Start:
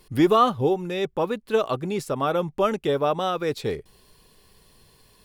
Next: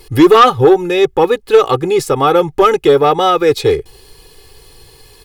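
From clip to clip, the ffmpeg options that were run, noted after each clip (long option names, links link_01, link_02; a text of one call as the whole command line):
ffmpeg -i in.wav -filter_complex "[0:a]aecho=1:1:2.4:0.81,asplit=2[link_01][link_02];[link_02]aeval=exprs='0.708*sin(PI/2*2.82*val(0)/0.708)':channel_layout=same,volume=-10dB[link_03];[link_01][link_03]amix=inputs=2:normalize=0,volume=4dB" out.wav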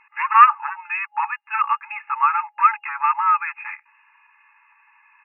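ffmpeg -i in.wav -af "afftfilt=real='re*between(b*sr/4096,830,2800)':imag='im*between(b*sr/4096,830,2800)':win_size=4096:overlap=0.75,volume=-2dB" out.wav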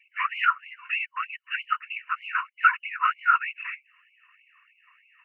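ffmpeg -i in.wav -af "afreqshift=120,afftfilt=real='hypot(re,im)*cos(2*PI*random(0))':imag='hypot(re,im)*sin(2*PI*random(1))':win_size=512:overlap=0.75,afftfilt=real='re*gte(b*sr/1024,940*pow(2100/940,0.5+0.5*sin(2*PI*3.2*pts/sr)))':imag='im*gte(b*sr/1024,940*pow(2100/940,0.5+0.5*sin(2*PI*3.2*pts/sr)))':win_size=1024:overlap=0.75,volume=3.5dB" out.wav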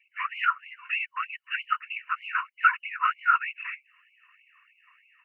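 ffmpeg -i in.wav -af "dynaudnorm=framelen=320:gausssize=3:maxgain=4dB,volume=-4.5dB" out.wav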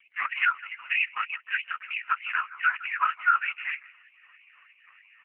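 ffmpeg -i in.wav -filter_complex "[0:a]alimiter=limit=-19dB:level=0:latency=1:release=162,asplit=2[link_01][link_02];[link_02]adelay=162,lowpass=frequency=1000:poles=1,volume=-13.5dB,asplit=2[link_03][link_04];[link_04]adelay=162,lowpass=frequency=1000:poles=1,volume=0.43,asplit=2[link_05][link_06];[link_06]adelay=162,lowpass=frequency=1000:poles=1,volume=0.43,asplit=2[link_07][link_08];[link_08]adelay=162,lowpass=frequency=1000:poles=1,volume=0.43[link_09];[link_01][link_03][link_05][link_07][link_09]amix=inputs=5:normalize=0,volume=9dB" -ar 8000 -c:a libopencore_amrnb -b:a 5150 out.amr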